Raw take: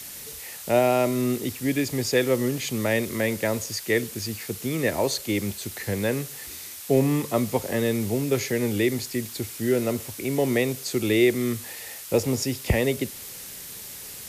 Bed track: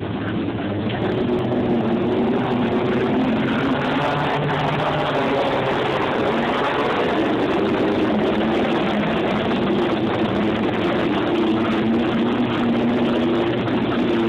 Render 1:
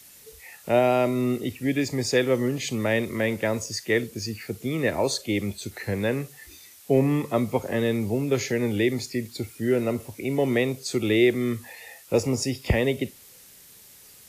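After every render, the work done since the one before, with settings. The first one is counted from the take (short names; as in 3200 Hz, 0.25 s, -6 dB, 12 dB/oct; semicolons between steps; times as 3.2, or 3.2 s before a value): noise print and reduce 11 dB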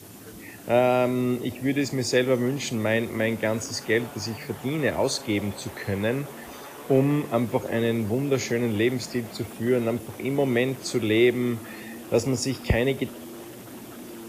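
add bed track -21.5 dB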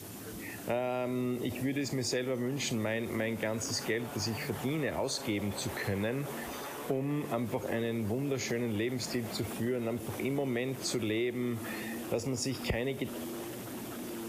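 transient shaper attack -3 dB, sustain +2 dB; compressor 10:1, threshold -29 dBFS, peak gain reduction 14.5 dB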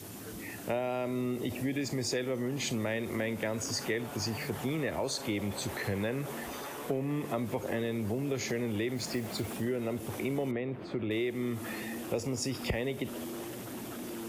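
8.96–9.62 block floating point 5-bit; 10.51–11.11 air absorption 480 m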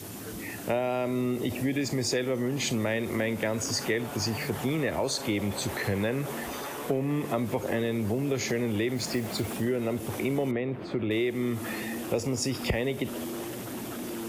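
gain +4.5 dB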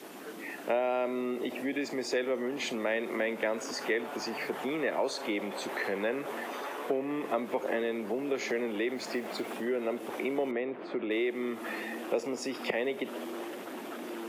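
HPF 190 Hz 24 dB/oct; tone controls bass -12 dB, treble -12 dB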